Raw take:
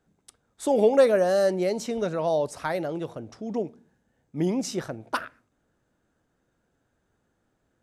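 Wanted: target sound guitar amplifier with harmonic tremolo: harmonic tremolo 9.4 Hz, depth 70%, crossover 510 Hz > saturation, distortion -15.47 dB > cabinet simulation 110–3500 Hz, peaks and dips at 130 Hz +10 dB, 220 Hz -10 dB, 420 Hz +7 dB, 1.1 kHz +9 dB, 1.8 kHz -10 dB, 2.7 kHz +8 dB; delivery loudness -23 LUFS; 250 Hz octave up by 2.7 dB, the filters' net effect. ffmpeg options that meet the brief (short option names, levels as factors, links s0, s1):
-filter_complex "[0:a]equalizer=f=250:t=o:g=6,acrossover=split=510[s0][s1];[s0]aeval=exprs='val(0)*(1-0.7/2+0.7/2*cos(2*PI*9.4*n/s))':c=same[s2];[s1]aeval=exprs='val(0)*(1-0.7/2-0.7/2*cos(2*PI*9.4*n/s))':c=same[s3];[s2][s3]amix=inputs=2:normalize=0,asoftclip=threshold=0.141,highpass=110,equalizer=f=130:t=q:w=4:g=10,equalizer=f=220:t=q:w=4:g=-10,equalizer=f=420:t=q:w=4:g=7,equalizer=f=1100:t=q:w=4:g=9,equalizer=f=1800:t=q:w=4:g=-10,equalizer=f=2700:t=q:w=4:g=8,lowpass=f=3500:w=0.5412,lowpass=f=3500:w=1.3066,volume=1.58"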